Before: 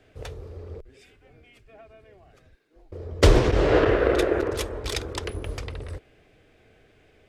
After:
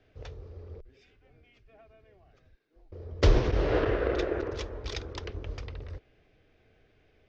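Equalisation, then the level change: steep low-pass 6300 Hz 48 dB/oct; low shelf 91 Hz +5.5 dB; -8.0 dB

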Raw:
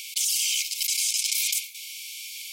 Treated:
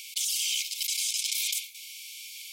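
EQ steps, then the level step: dynamic EQ 3500 Hz, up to +5 dB, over -42 dBFS, Q 3; -5.0 dB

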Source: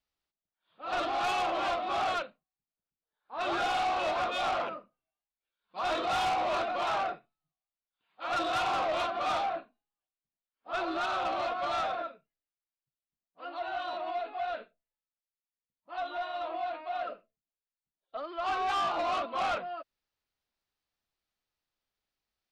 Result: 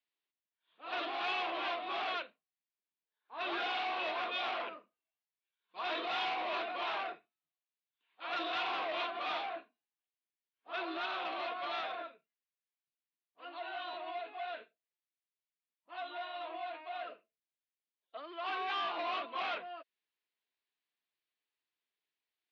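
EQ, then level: speaker cabinet 420–3900 Hz, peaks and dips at 560 Hz -10 dB, 800 Hz -8 dB, 1300 Hz -9 dB; 0.0 dB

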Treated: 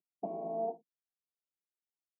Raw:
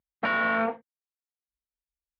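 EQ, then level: elliptic band-pass 180–680 Hz, stop band 40 dB; air absorption 370 m; fixed phaser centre 350 Hz, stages 8; 0.0 dB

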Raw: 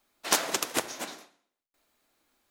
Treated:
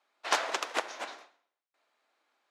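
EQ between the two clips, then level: HPF 640 Hz 12 dB/oct; tape spacing loss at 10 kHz 21 dB; +4.0 dB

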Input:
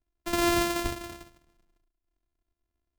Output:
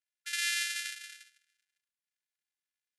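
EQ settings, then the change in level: brick-wall FIR band-pass 1400–12000 Hz; 0.0 dB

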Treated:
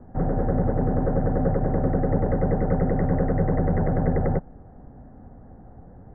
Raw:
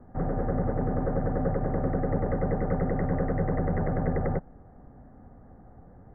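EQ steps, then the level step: air absorption 460 m; notch 1200 Hz, Q 15; +5.5 dB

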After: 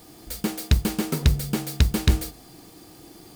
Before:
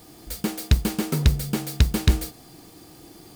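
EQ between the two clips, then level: notches 50/100/150 Hz; 0.0 dB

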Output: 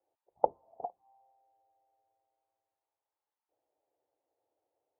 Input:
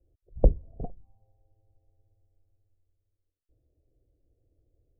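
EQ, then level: resonant high-pass 870 Hz, resonance Q 9.6; air absorption 400 m; +3.0 dB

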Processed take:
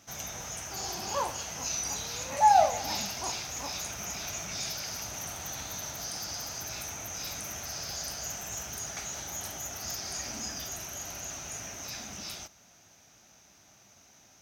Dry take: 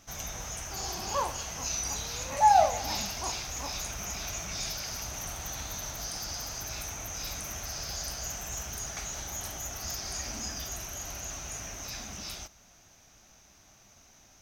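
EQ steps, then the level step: HPF 96 Hz 12 dB/oct; notch 1100 Hz, Q 25; 0.0 dB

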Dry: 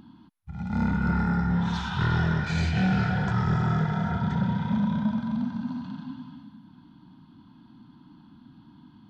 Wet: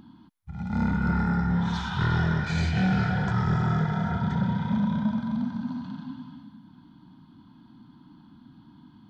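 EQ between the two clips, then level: notch 2700 Hz, Q 13; 0.0 dB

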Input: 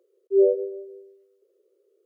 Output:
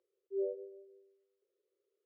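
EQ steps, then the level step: air absorption 140 m; bell 460 Hz -12.5 dB 1.7 oct; notches 50/100/150/200/250/300/350 Hz; -6.0 dB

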